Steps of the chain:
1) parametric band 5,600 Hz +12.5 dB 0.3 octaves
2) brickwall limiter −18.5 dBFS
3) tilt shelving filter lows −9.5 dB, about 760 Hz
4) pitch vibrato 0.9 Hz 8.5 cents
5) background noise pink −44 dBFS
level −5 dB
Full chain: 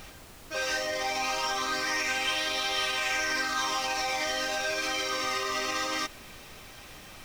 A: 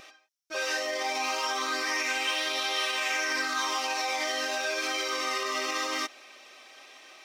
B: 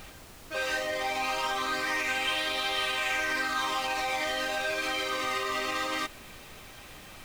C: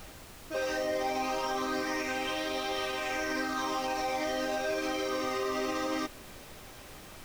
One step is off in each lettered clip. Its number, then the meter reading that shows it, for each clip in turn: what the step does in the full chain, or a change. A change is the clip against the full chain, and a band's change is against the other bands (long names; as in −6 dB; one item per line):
5, change in momentary loudness spread −16 LU
1, 8 kHz band −5.5 dB
3, 250 Hz band +10.5 dB